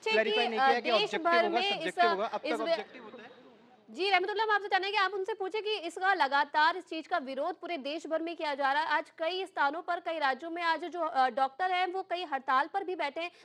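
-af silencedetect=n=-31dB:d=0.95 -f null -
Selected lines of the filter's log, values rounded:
silence_start: 2.81
silence_end: 4.00 | silence_duration: 1.18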